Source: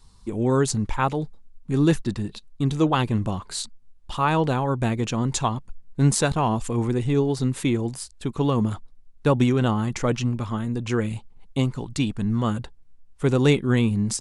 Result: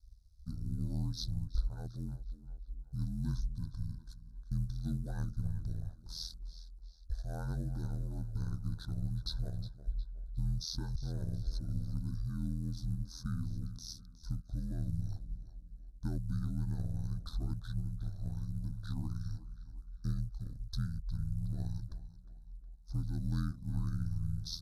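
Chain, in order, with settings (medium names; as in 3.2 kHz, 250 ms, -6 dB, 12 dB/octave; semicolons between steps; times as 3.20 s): companding laws mixed up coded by A; in parallel at -12 dB: hard clipper -16.5 dBFS, distortion -14 dB; on the sum: amplifier tone stack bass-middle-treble 10-0-1; compression 2:1, threshold -40 dBFS, peak gain reduction 9.5 dB; treble shelf 8.8 kHz +10.5 dB; speed mistake 78 rpm record played at 45 rpm; elliptic band-stop 1.5–3.8 kHz, stop band 40 dB; on a send: tape echo 362 ms, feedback 47%, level -13 dB, low-pass 5.2 kHz; on the sum: ring modulator 41 Hz; trim +7.5 dB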